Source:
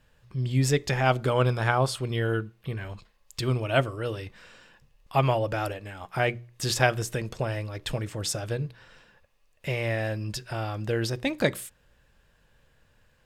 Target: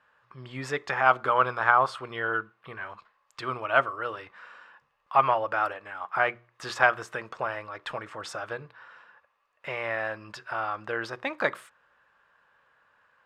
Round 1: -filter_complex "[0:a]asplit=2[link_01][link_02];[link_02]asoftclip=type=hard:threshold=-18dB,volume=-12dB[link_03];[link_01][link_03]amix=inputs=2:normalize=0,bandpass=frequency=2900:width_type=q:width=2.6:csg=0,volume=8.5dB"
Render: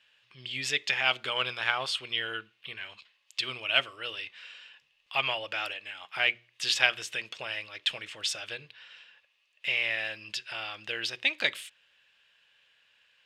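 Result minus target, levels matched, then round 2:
4,000 Hz band +16.0 dB
-filter_complex "[0:a]asplit=2[link_01][link_02];[link_02]asoftclip=type=hard:threshold=-18dB,volume=-12dB[link_03];[link_01][link_03]amix=inputs=2:normalize=0,bandpass=frequency=1200:width_type=q:width=2.6:csg=0,volume=8.5dB"

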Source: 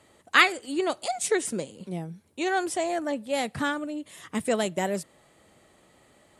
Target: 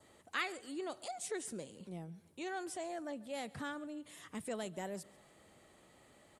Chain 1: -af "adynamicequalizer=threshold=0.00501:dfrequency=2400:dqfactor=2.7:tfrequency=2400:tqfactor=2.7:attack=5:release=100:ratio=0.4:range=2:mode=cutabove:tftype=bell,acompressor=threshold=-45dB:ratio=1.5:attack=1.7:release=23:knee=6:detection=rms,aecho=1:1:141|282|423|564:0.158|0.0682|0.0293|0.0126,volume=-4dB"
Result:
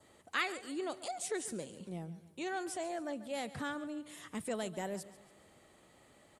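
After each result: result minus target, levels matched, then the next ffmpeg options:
echo-to-direct +6.5 dB; downward compressor: peak gain reduction −3 dB
-af "adynamicequalizer=threshold=0.00501:dfrequency=2400:dqfactor=2.7:tfrequency=2400:tqfactor=2.7:attack=5:release=100:ratio=0.4:range=2:mode=cutabove:tftype=bell,acompressor=threshold=-45dB:ratio=1.5:attack=1.7:release=23:knee=6:detection=rms,aecho=1:1:141|282|423:0.075|0.0322|0.0139,volume=-4dB"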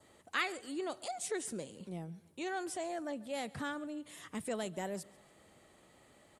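downward compressor: peak gain reduction −3 dB
-af "adynamicequalizer=threshold=0.00501:dfrequency=2400:dqfactor=2.7:tfrequency=2400:tqfactor=2.7:attack=5:release=100:ratio=0.4:range=2:mode=cutabove:tftype=bell,acompressor=threshold=-54dB:ratio=1.5:attack=1.7:release=23:knee=6:detection=rms,aecho=1:1:141|282|423:0.075|0.0322|0.0139,volume=-4dB"

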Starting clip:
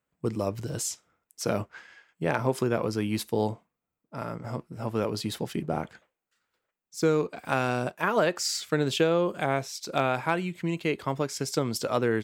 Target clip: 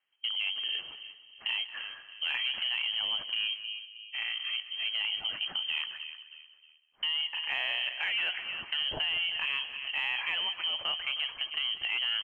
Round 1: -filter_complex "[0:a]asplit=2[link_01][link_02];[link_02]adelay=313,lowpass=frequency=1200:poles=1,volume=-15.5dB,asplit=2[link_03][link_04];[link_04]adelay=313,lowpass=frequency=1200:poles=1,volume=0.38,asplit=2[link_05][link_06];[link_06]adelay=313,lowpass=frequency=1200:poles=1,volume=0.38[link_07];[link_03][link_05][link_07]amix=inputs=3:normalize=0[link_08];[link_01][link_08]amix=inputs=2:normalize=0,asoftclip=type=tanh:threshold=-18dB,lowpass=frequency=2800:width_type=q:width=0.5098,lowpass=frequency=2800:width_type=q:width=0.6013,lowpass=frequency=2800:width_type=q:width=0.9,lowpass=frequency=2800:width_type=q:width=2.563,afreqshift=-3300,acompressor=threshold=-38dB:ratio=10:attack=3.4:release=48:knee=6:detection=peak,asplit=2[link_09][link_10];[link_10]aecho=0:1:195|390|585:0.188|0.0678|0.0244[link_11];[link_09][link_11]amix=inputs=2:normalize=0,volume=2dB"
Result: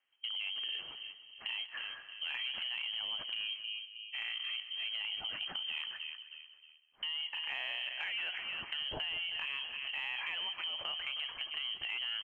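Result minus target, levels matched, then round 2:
downward compressor: peak gain reduction +7 dB
-filter_complex "[0:a]asplit=2[link_01][link_02];[link_02]adelay=313,lowpass=frequency=1200:poles=1,volume=-15.5dB,asplit=2[link_03][link_04];[link_04]adelay=313,lowpass=frequency=1200:poles=1,volume=0.38,asplit=2[link_05][link_06];[link_06]adelay=313,lowpass=frequency=1200:poles=1,volume=0.38[link_07];[link_03][link_05][link_07]amix=inputs=3:normalize=0[link_08];[link_01][link_08]amix=inputs=2:normalize=0,asoftclip=type=tanh:threshold=-18dB,lowpass=frequency=2800:width_type=q:width=0.5098,lowpass=frequency=2800:width_type=q:width=0.6013,lowpass=frequency=2800:width_type=q:width=0.9,lowpass=frequency=2800:width_type=q:width=2.563,afreqshift=-3300,acompressor=threshold=-30dB:ratio=10:attack=3.4:release=48:knee=6:detection=peak,asplit=2[link_09][link_10];[link_10]aecho=0:1:195|390|585:0.188|0.0678|0.0244[link_11];[link_09][link_11]amix=inputs=2:normalize=0,volume=2dB"

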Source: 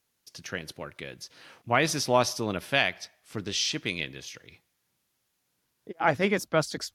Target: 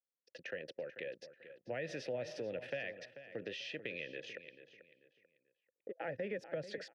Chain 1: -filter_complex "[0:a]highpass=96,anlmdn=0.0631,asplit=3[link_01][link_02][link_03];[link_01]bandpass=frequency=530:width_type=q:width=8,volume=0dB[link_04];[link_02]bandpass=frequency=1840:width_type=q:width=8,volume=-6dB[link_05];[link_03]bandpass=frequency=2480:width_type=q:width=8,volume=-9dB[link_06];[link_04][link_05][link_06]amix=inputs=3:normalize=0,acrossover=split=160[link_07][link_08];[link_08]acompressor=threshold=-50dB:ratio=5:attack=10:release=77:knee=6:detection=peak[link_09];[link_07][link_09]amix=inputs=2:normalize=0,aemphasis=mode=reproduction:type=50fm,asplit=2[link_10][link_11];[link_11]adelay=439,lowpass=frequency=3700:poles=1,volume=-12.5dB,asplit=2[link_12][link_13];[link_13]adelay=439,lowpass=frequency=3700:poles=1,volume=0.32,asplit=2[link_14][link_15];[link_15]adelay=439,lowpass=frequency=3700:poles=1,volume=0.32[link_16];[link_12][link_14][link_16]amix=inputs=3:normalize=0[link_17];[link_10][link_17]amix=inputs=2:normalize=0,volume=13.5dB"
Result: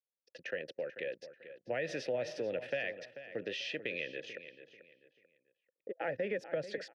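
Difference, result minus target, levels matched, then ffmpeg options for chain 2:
downward compressor: peak gain reduction −5 dB
-filter_complex "[0:a]highpass=96,anlmdn=0.0631,asplit=3[link_01][link_02][link_03];[link_01]bandpass=frequency=530:width_type=q:width=8,volume=0dB[link_04];[link_02]bandpass=frequency=1840:width_type=q:width=8,volume=-6dB[link_05];[link_03]bandpass=frequency=2480:width_type=q:width=8,volume=-9dB[link_06];[link_04][link_05][link_06]amix=inputs=3:normalize=0,acrossover=split=160[link_07][link_08];[link_08]acompressor=threshold=-56.5dB:ratio=5:attack=10:release=77:knee=6:detection=peak[link_09];[link_07][link_09]amix=inputs=2:normalize=0,aemphasis=mode=reproduction:type=50fm,asplit=2[link_10][link_11];[link_11]adelay=439,lowpass=frequency=3700:poles=1,volume=-12.5dB,asplit=2[link_12][link_13];[link_13]adelay=439,lowpass=frequency=3700:poles=1,volume=0.32,asplit=2[link_14][link_15];[link_15]adelay=439,lowpass=frequency=3700:poles=1,volume=0.32[link_16];[link_12][link_14][link_16]amix=inputs=3:normalize=0[link_17];[link_10][link_17]amix=inputs=2:normalize=0,volume=13.5dB"

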